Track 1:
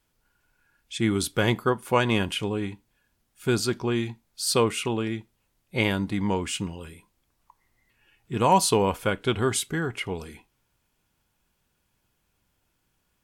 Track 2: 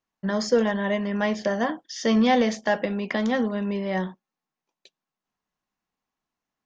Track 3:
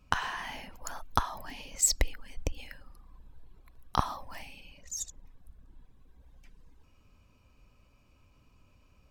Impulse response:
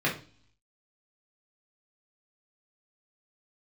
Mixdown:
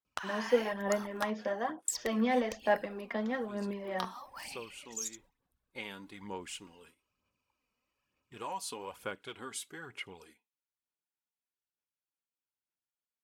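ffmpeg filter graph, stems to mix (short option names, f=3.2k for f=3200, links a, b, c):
-filter_complex "[0:a]volume=-13.5dB[a];[1:a]lowpass=f=1.3k:p=1,volume=-6dB,asplit=2[b][c];[2:a]adelay=50,volume=0dB,asplit=3[d][e][f];[d]atrim=end=1.3,asetpts=PTS-STARTPTS,afade=t=out:st=1.296:d=0.004:c=hsin[g];[e]atrim=start=1.3:end=1.88,asetpts=PTS-STARTPTS,volume=0[h];[f]atrim=start=1.88,asetpts=PTS-STARTPTS,afade=t=in:d=0.004:c=hsin[i];[g][h][i]concat=n=3:v=0:a=1[j];[c]apad=whole_len=583499[k];[a][k]sidechaincompress=threshold=-47dB:ratio=3:attack=6.2:release=1060[l];[l][j]amix=inputs=2:normalize=0,bandreject=f=670:w=12,acompressor=threshold=-35dB:ratio=5,volume=0dB[m];[b][m]amix=inputs=2:normalize=0,aphaser=in_gain=1:out_gain=1:delay=4.5:decay=0.48:speed=1.1:type=sinusoidal,highpass=f=530:p=1,agate=range=-14dB:threshold=-59dB:ratio=16:detection=peak"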